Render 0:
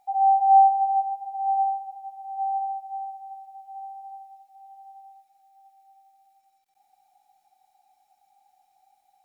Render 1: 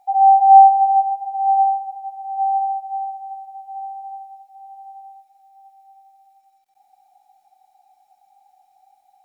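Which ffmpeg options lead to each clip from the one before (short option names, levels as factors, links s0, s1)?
-af "equalizer=f=720:t=o:w=0.6:g=6.5,volume=1.26"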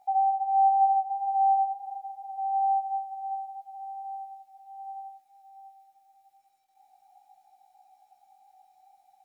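-af "acompressor=threshold=0.1:ratio=2.5,flanger=delay=17:depth=3:speed=0.24"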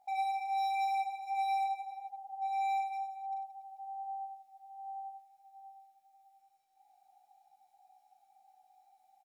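-filter_complex "[0:a]asoftclip=type=hard:threshold=0.0422,asplit=2[s0][s1];[s1]aecho=0:1:40|96|174.4|284.2|437.8:0.631|0.398|0.251|0.158|0.1[s2];[s0][s2]amix=inputs=2:normalize=0,volume=0.422"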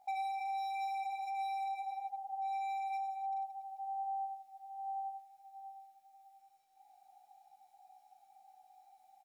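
-af "alimiter=level_in=4.47:limit=0.0631:level=0:latency=1:release=47,volume=0.224,volume=1.41"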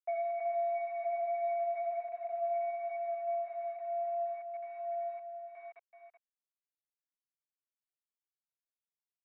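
-af "aresample=16000,aeval=exprs='val(0)*gte(abs(val(0)),0.00355)':c=same,aresample=44100,aecho=1:1:379:0.422,highpass=f=600:t=q:w=0.5412,highpass=f=600:t=q:w=1.307,lowpass=f=2200:t=q:w=0.5176,lowpass=f=2200:t=q:w=0.7071,lowpass=f=2200:t=q:w=1.932,afreqshift=-94,volume=1.5"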